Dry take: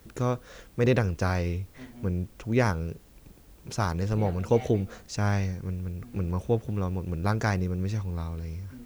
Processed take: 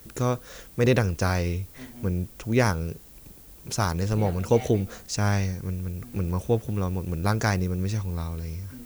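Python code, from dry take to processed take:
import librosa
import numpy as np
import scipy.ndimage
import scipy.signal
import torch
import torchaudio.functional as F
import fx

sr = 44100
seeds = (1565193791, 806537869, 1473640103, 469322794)

y = fx.high_shelf(x, sr, hz=5900.0, db=11.0)
y = F.gain(torch.from_numpy(y), 2.0).numpy()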